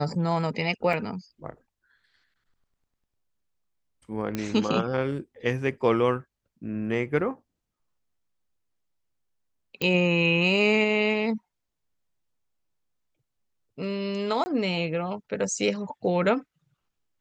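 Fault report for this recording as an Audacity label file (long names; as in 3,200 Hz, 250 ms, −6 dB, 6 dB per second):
0.930000	0.930000	drop-out 3 ms
4.350000	4.350000	click −15 dBFS
9.820000	9.820000	click −13 dBFS
14.440000	14.460000	drop-out 20 ms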